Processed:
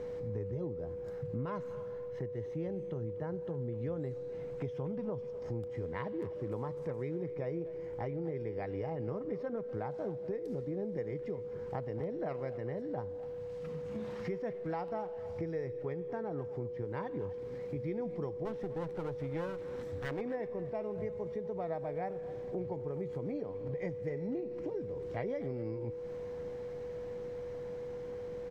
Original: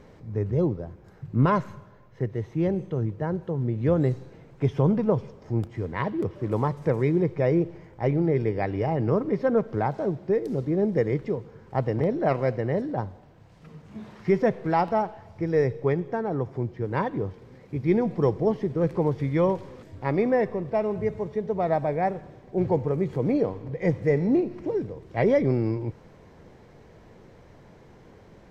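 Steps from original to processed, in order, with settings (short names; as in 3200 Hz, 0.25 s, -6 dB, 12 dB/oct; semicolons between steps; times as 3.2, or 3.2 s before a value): 18.45–20.21 minimum comb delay 0.53 ms; compressor 5:1, threshold -38 dBFS, peak gain reduction 20 dB; whine 490 Hz -38 dBFS; speakerphone echo 0.25 s, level -15 dB; attack slew limiter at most 220 dB/s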